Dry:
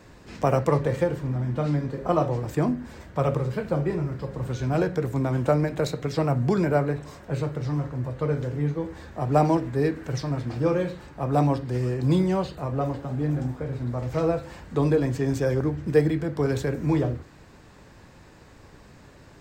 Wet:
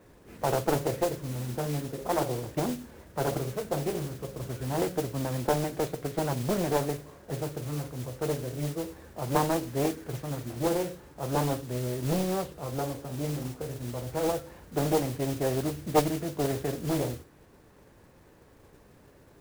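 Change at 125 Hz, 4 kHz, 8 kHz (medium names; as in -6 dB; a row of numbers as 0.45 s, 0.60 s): -8.0 dB, +2.5 dB, +7.5 dB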